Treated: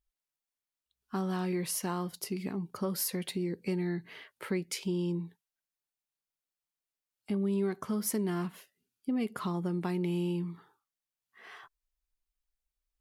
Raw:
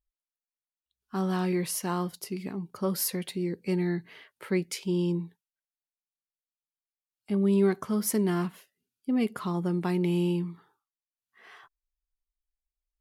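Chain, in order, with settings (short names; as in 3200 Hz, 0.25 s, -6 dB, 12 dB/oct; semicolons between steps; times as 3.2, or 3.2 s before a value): compressor 2.5:1, threshold -33 dBFS, peak gain reduction 10 dB; gain +1.5 dB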